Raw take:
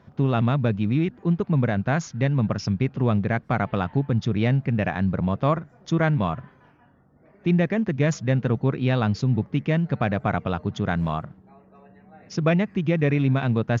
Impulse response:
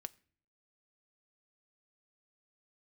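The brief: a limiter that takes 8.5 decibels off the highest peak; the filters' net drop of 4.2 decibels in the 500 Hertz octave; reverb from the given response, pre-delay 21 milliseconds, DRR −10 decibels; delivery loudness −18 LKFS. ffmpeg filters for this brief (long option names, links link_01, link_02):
-filter_complex "[0:a]equalizer=frequency=500:width_type=o:gain=-5.5,alimiter=limit=-19dB:level=0:latency=1,asplit=2[link_01][link_02];[1:a]atrim=start_sample=2205,adelay=21[link_03];[link_02][link_03]afir=irnorm=-1:irlink=0,volume=14.5dB[link_04];[link_01][link_04]amix=inputs=2:normalize=0,volume=0.5dB"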